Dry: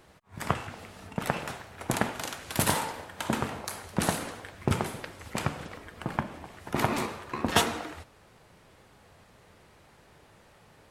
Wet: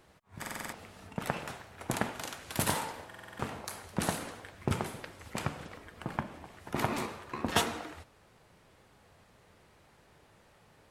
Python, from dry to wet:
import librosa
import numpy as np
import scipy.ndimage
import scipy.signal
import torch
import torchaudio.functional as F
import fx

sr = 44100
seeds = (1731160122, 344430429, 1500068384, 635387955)

y = fx.buffer_glitch(x, sr, at_s=(0.4, 3.07), block=2048, repeats=6)
y = y * 10.0 ** (-4.5 / 20.0)